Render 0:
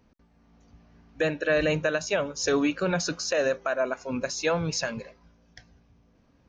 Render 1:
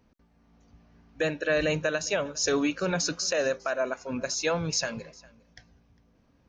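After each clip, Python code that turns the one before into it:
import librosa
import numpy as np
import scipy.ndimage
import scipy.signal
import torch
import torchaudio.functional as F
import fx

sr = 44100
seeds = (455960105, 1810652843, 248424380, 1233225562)

y = fx.dynamic_eq(x, sr, hz=6800.0, q=0.72, threshold_db=-46.0, ratio=4.0, max_db=5)
y = y + 10.0 ** (-24.0 / 20.0) * np.pad(y, (int(404 * sr / 1000.0), 0))[:len(y)]
y = F.gain(torch.from_numpy(y), -2.0).numpy()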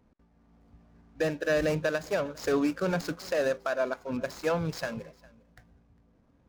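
y = scipy.ndimage.median_filter(x, 15, mode='constant')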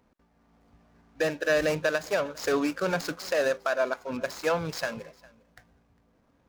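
y = fx.low_shelf(x, sr, hz=350.0, db=-9.5)
y = F.gain(torch.from_numpy(y), 4.5).numpy()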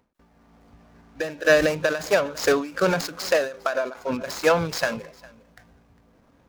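y = fx.end_taper(x, sr, db_per_s=120.0)
y = F.gain(torch.from_numpy(y), 8.0).numpy()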